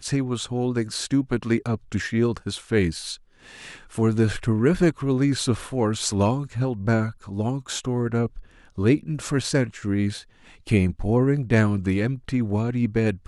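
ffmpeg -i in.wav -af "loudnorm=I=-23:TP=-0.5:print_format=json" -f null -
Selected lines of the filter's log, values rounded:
"input_i" : "-23.7",
"input_tp" : "-7.2",
"input_lra" : "2.4",
"input_thresh" : "-34.1",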